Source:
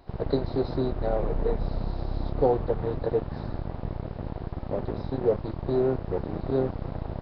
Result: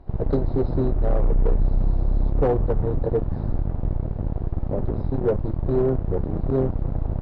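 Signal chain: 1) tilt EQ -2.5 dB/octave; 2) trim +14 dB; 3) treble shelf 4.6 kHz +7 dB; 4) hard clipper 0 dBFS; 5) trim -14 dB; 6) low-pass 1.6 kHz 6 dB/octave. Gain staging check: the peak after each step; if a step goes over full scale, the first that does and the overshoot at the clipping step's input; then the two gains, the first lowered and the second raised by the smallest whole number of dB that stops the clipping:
-5.5 dBFS, +8.5 dBFS, +8.5 dBFS, 0.0 dBFS, -14.0 dBFS, -14.0 dBFS; step 2, 8.5 dB; step 2 +5 dB, step 5 -5 dB

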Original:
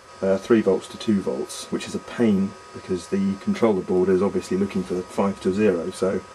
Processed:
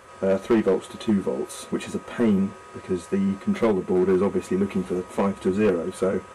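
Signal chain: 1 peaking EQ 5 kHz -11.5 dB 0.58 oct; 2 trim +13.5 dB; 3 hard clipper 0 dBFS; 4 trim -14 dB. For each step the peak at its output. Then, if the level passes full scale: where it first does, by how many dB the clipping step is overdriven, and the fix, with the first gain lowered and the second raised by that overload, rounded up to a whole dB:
-4.5 dBFS, +9.0 dBFS, 0.0 dBFS, -14.0 dBFS; step 2, 9.0 dB; step 2 +4.5 dB, step 4 -5 dB

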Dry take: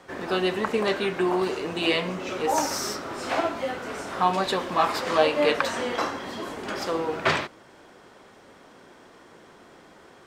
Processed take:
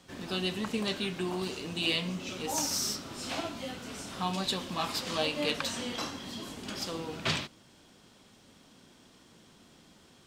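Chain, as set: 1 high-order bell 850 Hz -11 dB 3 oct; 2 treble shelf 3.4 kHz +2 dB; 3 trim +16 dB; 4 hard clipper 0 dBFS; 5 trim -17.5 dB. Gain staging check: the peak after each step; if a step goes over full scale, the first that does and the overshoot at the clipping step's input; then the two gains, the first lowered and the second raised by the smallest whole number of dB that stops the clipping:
-12.5 dBFS, -11.5 dBFS, +4.5 dBFS, 0.0 dBFS, -17.5 dBFS; step 3, 4.5 dB; step 3 +11 dB, step 5 -12.5 dB

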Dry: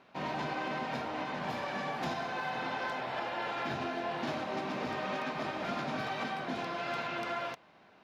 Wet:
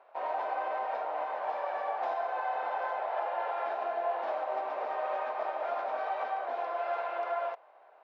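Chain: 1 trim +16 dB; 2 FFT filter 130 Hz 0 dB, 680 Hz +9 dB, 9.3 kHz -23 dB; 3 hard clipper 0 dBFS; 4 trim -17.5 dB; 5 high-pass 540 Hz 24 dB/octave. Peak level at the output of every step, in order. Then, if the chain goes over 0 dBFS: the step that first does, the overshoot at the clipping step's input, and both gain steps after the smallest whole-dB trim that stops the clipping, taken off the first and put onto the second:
-8.5 dBFS, -2.5 dBFS, -2.5 dBFS, -20.0 dBFS, -20.5 dBFS; nothing clips

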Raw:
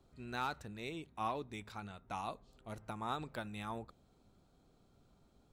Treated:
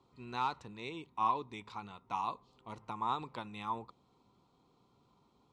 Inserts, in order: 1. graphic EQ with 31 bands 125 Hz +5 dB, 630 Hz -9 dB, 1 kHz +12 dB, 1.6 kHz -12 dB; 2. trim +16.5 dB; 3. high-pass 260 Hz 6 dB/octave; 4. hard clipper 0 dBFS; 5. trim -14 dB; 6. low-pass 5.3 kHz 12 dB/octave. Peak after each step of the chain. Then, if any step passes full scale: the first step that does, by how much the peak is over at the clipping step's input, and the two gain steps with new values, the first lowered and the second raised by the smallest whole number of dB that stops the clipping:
-21.5 dBFS, -5.0 dBFS, -5.5 dBFS, -5.5 dBFS, -19.5 dBFS, -19.5 dBFS; nothing clips

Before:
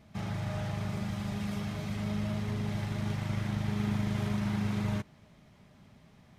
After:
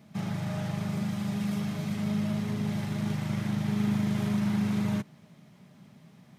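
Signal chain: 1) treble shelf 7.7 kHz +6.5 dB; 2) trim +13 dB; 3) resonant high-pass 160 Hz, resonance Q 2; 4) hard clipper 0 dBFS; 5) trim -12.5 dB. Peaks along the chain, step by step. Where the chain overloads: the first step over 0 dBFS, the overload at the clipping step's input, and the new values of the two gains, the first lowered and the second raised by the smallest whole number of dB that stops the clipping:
-19.5 dBFS, -6.5 dBFS, -4.5 dBFS, -4.5 dBFS, -17.0 dBFS; nothing clips

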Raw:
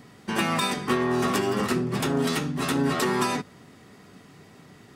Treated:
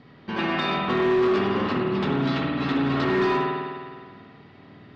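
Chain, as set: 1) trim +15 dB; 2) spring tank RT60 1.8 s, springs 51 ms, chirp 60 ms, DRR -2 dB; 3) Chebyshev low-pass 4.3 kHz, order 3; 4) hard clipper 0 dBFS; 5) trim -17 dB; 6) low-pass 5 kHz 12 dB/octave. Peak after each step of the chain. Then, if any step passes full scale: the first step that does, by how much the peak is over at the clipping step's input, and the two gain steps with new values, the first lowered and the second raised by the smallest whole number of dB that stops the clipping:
+4.0 dBFS, +6.5 dBFS, +6.0 dBFS, 0.0 dBFS, -17.0 dBFS, -16.5 dBFS; step 1, 6.0 dB; step 1 +9 dB, step 5 -11 dB

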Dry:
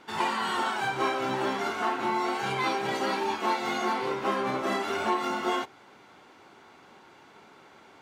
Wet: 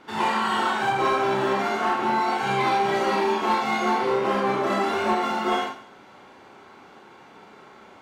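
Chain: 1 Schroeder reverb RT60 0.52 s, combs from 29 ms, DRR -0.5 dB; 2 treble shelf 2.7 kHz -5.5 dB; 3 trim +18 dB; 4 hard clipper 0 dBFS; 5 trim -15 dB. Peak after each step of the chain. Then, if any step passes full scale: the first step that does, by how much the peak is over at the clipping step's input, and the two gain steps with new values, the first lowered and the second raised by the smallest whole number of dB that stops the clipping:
-12.5 dBFS, -13.0 dBFS, +5.0 dBFS, 0.0 dBFS, -15.0 dBFS; step 3, 5.0 dB; step 3 +13 dB, step 5 -10 dB

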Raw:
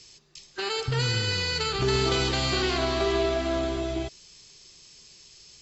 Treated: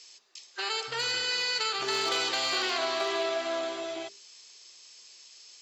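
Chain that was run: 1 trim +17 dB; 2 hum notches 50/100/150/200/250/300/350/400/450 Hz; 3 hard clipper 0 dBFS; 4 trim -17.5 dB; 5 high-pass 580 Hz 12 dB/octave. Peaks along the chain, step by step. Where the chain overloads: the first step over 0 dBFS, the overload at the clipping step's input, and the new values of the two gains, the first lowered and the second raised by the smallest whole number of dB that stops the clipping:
+5.0 dBFS, +4.5 dBFS, 0.0 dBFS, -17.5 dBFS, -16.5 dBFS; step 1, 4.5 dB; step 1 +12 dB, step 4 -12.5 dB

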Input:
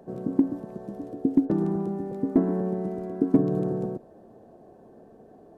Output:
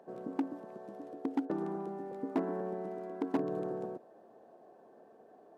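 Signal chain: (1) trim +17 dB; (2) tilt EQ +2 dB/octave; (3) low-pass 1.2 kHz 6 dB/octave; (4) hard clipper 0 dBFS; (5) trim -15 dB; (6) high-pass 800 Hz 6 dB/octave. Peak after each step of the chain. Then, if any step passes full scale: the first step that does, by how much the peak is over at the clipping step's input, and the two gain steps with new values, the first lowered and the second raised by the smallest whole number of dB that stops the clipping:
+8.5 dBFS, +5.5 dBFS, +5.0 dBFS, 0.0 dBFS, -15.0 dBFS, -18.5 dBFS; step 1, 5.0 dB; step 1 +12 dB, step 5 -10 dB

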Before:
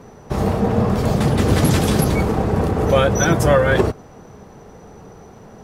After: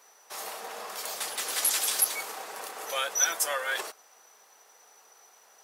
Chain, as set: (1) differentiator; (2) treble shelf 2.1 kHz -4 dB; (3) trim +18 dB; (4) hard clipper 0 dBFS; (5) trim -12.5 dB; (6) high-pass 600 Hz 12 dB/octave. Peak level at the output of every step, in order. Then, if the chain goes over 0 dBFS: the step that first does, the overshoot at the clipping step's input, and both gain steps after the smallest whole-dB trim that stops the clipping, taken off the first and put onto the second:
-10.5 dBFS, -14.5 dBFS, +3.5 dBFS, 0.0 dBFS, -12.5 dBFS, -11.5 dBFS; step 3, 3.5 dB; step 3 +14 dB, step 5 -8.5 dB

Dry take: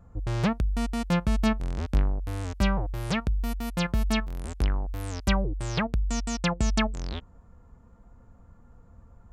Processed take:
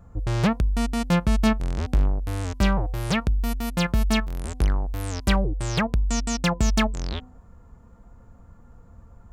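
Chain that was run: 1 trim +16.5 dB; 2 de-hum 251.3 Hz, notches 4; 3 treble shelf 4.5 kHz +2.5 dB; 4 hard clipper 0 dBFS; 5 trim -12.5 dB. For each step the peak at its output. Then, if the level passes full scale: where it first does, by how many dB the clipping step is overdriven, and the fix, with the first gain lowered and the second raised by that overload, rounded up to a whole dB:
+6.0 dBFS, +6.0 dBFS, +6.5 dBFS, 0.0 dBFS, -12.5 dBFS; step 1, 6.5 dB; step 1 +9.5 dB, step 5 -5.5 dB

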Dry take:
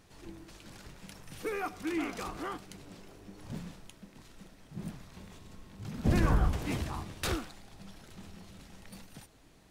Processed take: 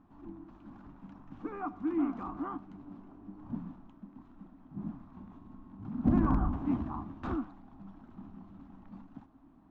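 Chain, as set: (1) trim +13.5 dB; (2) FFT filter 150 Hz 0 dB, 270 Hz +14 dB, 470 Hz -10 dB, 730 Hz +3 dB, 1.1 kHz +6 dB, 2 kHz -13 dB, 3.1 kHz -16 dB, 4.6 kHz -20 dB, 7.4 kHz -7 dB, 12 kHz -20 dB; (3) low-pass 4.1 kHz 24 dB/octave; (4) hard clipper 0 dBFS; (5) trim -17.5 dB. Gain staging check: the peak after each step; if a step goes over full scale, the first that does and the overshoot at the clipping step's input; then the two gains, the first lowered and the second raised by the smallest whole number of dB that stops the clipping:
-1.0 dBFS, +4.0 dBFS, +4.0 dBFS, 0.0 dBFS, -17.5 dBFS; step 2, 4.0 dB; step 1 +9.5 dB, step 5 -13.5 dB

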